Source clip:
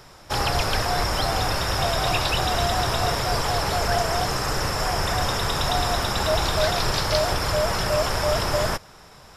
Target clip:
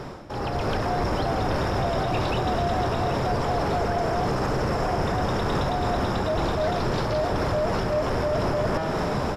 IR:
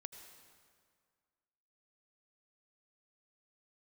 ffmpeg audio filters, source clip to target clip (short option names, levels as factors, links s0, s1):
-filter_complex "[0:a]lowpass=f=2200:p=1,equalizer=f=270:t=o:w=2.6:g=11,bandreject=f=160.6:t=h:w=4,bandreject=f=321.2:t=h:w=4,bandreject=f=481.8:t=h:w=4,bandreject=f=642.4:t=h:w=4,bandreject=f=803:t=h:w=4,bandreject=f=963.6:t=h:w=4,bandreject=f=1124.2:t=h:w=4,bandreject=f=1284.8:t=h:w=4,bandreject=f=1445.4:t=h:w=4,bandreject=f=1606:t=h:w=4,bandreject=f=1766.6:t=h:w=4,bandreject=f=1927.2:t=h:w=4,bandreject=f=2087.8:t=h:w=4,bandreject=f=2248.4:t=h:w=4,bandreject=f=2409:t=h:w=4,bandreject=f=2569.6:t=h:w=4,bandreject=f=2730.2:t=h:w=4,bandreject=f=2890.8:t=h:w=4,bandreject=f=3051.4:t=h:w=4,bandreject=f=3212:t=h:w=4,bandreject=f=3372.6:t=h:w=4,bandreject=f=3533.2:t=h:w=4,bandreject=f=3693.8:t=h:w=4,bandreject=f=3854.4:t=h:w=4,bandreject=f=4015:t=h:w=4,bandreject=f=4175.6:t=h:w=4,bandreject=f=4336.2:t=h:w=4,bandreject=f=4496.8:t=h:w=4,bandreject=f=4657.4:t=h:w=4,bandreject=f=4818:t=h:w=4,bandreject=f=4978.6:t=h:w=4,bandreject=f=5139.2:t=h:w=4,bandreject=f=5299.8:t=h:w=4,areverse,acompressor=threshold=0.0224:ratio=6,areverse,alimiter=level_in=3.35:limit=0.0631:level=0:latency=1:release=227,volume=0.299,dynaudnorm=f=300:g=3:m=3.76,asoftclip=type=tanh:threshold=0.0501,asplit=2[s0][s1];[s1]aecho=0:1:781:0.299[s2];[s0][s2]amix=inputs=2:normalize=0,volume=2.66"